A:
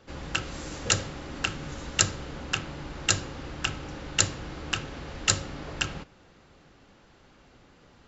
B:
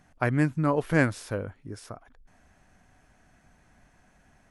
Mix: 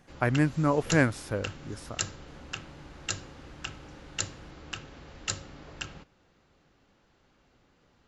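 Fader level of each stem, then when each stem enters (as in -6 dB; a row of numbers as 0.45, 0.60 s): -9.0, -0.5 dB; 0.00, 0.00 s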